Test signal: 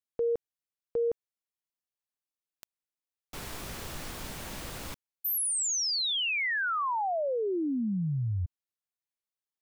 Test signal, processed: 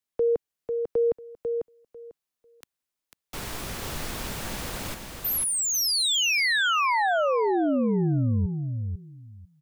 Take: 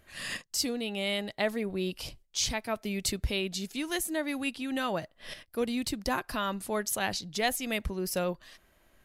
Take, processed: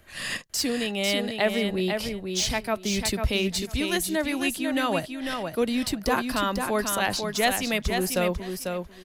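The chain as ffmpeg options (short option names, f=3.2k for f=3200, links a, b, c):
-filter_complex "[0:a]acrossover=split=210|520|3500[a][b][c][d];[d]asoftclip=type=tanh:threshold=-28dB[e];[a][b][c][e]amix=inputs=4:normalize=0,aecho=1:1:496|992|1488:0.531|0.0903|0.0153,volume=5.5dB"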